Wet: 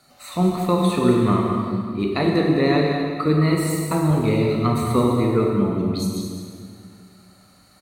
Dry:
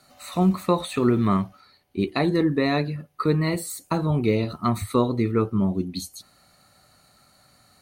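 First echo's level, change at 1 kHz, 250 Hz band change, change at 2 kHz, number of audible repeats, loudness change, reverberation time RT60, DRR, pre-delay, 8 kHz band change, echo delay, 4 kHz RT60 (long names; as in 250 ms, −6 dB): −9.0 dB, +3.5 dB, +3.5 dB, +3.5 dB, 1, +3.5 dB, 2.2 s, −0.5 dB, 23 ms, +3.0 dB, 209 ms, 1.8 s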